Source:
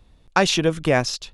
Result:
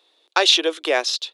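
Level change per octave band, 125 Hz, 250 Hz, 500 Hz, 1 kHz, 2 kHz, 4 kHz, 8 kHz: below −40 dB, −7.5 dB, −1.0 dB, −0.5 dB, +1.0 dB, +8.0 dB, +1.0 dB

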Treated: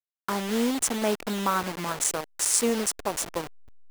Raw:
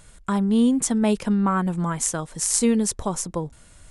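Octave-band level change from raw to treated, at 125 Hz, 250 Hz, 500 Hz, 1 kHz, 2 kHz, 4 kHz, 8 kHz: −11.5, −9.5, −1.5, −1.0, +2.0, +2.0, −1.5 decibels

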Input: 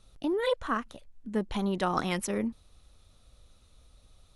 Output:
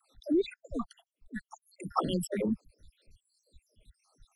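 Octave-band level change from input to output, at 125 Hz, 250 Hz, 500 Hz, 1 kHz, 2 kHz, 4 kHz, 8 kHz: −3.0, −1.0, −3.5, −4.5, −10.5, −5.5, −5.0 decibels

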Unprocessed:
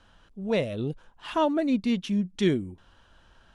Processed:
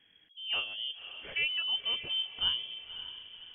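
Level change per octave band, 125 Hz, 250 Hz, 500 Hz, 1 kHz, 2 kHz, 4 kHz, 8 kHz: −26.0 dB, −35.5 dB, −25.5 dB, −16.5 dB, +3.0 dB, +11.5 dB, can't be measured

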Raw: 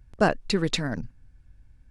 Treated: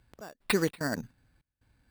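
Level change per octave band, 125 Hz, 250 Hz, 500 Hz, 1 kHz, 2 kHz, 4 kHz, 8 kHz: −7.5, −5.5, −6.0, −10.5, −4.0, −8.0, −2.5 decibels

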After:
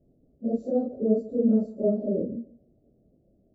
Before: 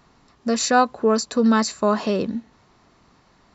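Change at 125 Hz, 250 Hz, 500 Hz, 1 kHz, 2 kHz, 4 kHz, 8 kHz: −2.5 dB, −4.0 dB, −4.5 dB, below −20 dB, below −40 dB, below −40 dB, can't be measured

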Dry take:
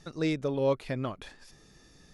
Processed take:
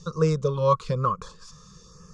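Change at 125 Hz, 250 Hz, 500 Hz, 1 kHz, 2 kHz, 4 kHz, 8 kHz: +10.5 dB, +1.0 dB, +5.5 dB, +14.0 dB, −3.0 dB, +1.5 dB, can't be measured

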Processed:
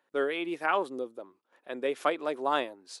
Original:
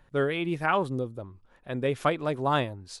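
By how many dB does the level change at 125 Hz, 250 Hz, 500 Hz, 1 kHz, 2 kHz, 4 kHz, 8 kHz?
−25.5, −5.5, −2.0, −2.0, −2.0, −2.0, −2.0 decibels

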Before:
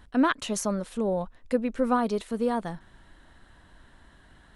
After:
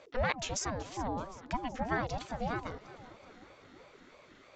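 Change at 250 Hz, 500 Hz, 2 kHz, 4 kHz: −13.5, −10.0, −2.5, −3.0 decibels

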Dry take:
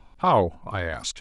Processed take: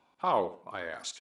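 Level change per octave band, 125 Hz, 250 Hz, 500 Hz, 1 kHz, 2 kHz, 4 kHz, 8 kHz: −20.5 dB, −12.0 dB, −8.0 dB, −7.5 dB, −7.5 dB, −8.0 dB, can't be measured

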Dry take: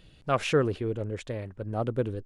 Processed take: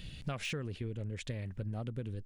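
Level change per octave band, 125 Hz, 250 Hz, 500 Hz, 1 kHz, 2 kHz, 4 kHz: −5.0, −9.5, −16.5, −16.5, −7.5, −5.5 decibels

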